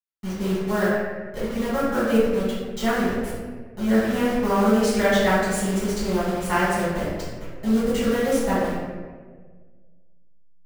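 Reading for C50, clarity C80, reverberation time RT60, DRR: -1.5 dB, 1.5 dB, 1.5 s, -12.0 dB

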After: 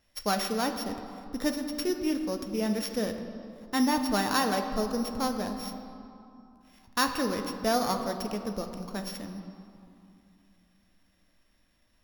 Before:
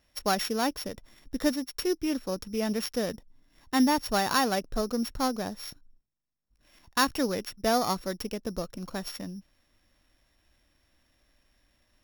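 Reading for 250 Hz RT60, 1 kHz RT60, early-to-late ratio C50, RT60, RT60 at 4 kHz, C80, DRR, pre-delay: 3.4 s, 2.9 s, 7.0 dB, 2.7 s, 1.6 s, 8.0 dB, 5.0 dB, 4 ms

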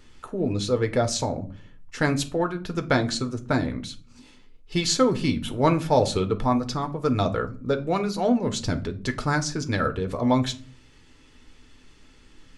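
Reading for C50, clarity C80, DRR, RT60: 16.5 dB, 22.5 dB, 6.5 dB, not exponential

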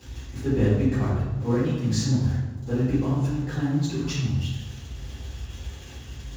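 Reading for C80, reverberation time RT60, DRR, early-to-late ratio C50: 2.5 dB, 1.1 s, -12.5 dB, -0.5 dB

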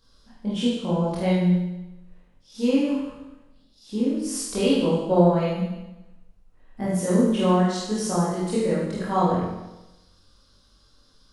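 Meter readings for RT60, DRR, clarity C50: 1.0 s, -8.5 dB, -1.0 dB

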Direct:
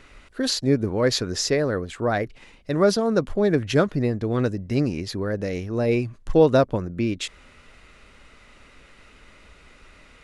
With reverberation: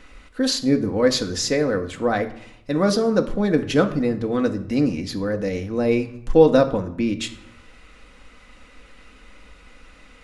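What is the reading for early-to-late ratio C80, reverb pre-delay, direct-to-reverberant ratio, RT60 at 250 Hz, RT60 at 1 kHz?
16.5 dB, 4 ms, 4.5 dB, 0.95 s, 0.75 s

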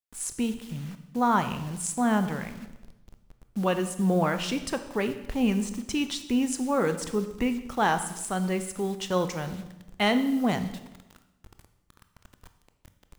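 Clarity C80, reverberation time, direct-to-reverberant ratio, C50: 13.0 dB, 0.95 s, 9.0 dB, 11.0 dB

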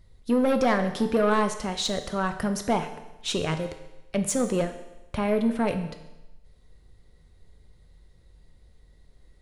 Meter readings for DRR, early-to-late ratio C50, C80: 7.0 dB, 10.0 dB, 12.0 dB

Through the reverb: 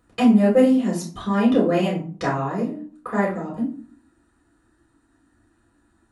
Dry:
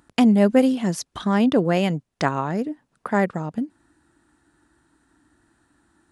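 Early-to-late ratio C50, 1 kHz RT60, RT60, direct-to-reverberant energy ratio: 6.5 dB, 0.45 s, 0.45 s, -5.5 dB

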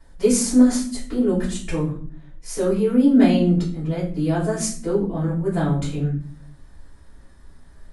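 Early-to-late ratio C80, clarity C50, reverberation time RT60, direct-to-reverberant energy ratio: 12.0 dB, 7.5 dB, 0.50 s, -10.0 dB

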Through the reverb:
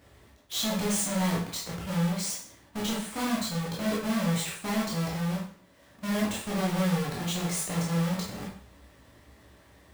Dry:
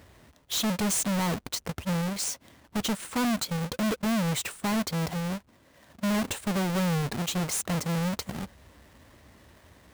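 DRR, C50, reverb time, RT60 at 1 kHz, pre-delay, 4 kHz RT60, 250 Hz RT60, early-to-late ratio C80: -5.5 dB, 3.0 dB, 0.50 s, 0.50 s, 7 ms, 0.50 s, 0.50 s, 8.5 dB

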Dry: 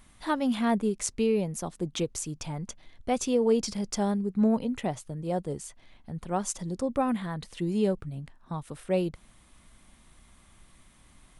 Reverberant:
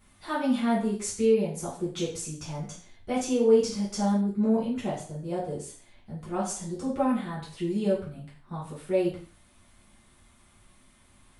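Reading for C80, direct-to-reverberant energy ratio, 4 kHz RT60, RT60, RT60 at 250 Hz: 9.5 dB, -9.0 dB, n/a, 0.45 s, 0.50 s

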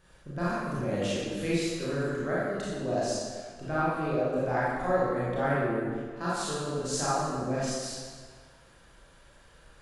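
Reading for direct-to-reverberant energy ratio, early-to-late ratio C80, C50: -9.0 dB, -0.5 dB, -4.5 dB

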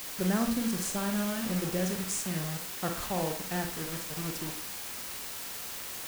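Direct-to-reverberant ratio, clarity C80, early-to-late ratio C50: 3.5 dB, 12.5 dB, 7.0 dB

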